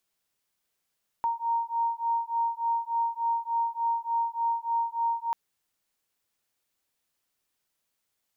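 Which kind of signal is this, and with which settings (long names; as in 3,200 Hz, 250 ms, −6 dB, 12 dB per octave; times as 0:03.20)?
two tones that beat 926 Hz, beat 3.4 Hz, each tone −28.5 dBFS 4.09 s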